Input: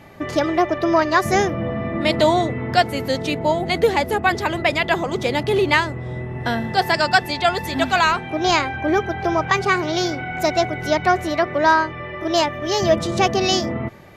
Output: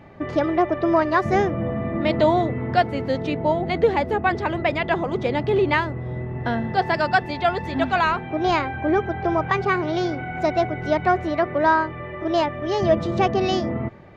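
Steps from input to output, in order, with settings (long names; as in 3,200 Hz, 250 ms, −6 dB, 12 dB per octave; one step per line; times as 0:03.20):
head-to-tape spacing loss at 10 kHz 26 dB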